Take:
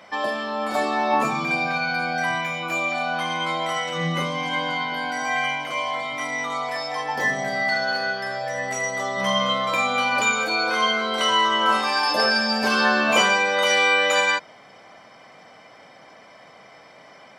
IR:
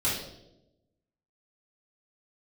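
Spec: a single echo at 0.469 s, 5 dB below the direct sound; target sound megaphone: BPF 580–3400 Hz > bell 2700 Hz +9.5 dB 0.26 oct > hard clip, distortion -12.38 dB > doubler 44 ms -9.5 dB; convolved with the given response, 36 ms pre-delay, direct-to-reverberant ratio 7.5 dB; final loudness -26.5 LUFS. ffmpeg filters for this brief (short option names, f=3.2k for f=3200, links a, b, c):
-filter_complex "[0:a]aecho=1:1:469:0.562,asplit=2[a][b];[1:a]atrim=start_sample=2205,adelay=36[c];[b][c]afir=irnorm=-1:irlink=0,volume=-17dB[d];[a][d]amix=inputs=2:normalize=0,highpass=580,lowpass=3.4k,equalizer=f=2.7k:t=o:w=0.26:g=9.5,asoftclip=type=hard:threshold=-17dB,asplit=2[e][f];[f]adelay=44,volume=-9.5dB[g];[e][g]amix=inputs=2:normalize=0,volume=-6dB"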